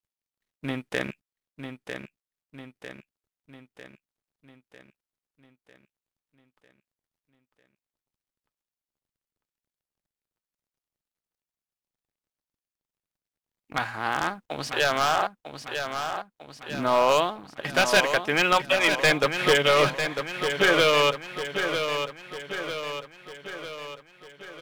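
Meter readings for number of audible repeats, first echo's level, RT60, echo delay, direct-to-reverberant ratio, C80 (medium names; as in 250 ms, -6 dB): 6, -7.5 dB, no reverb, 949 ms, no reverb, no reverb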